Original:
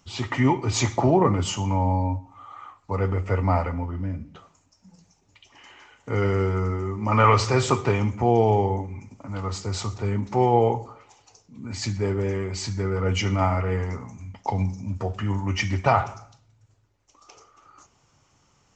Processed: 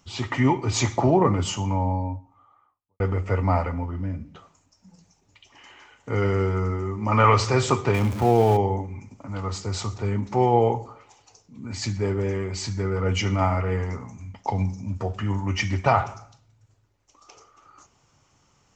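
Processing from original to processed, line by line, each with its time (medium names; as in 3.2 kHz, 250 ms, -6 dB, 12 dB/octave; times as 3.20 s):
1.43–3.00 s: studio fade out
7.94–8.57 s: jump at every zero crossing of -29.5 dBFS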